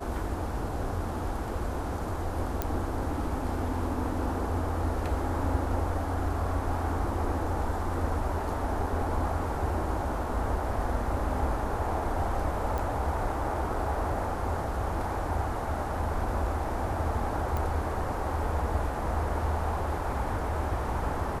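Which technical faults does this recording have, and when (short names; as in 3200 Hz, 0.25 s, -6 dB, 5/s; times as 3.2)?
2.62 pop -13 dBFS
12.78 pop
17.57 pop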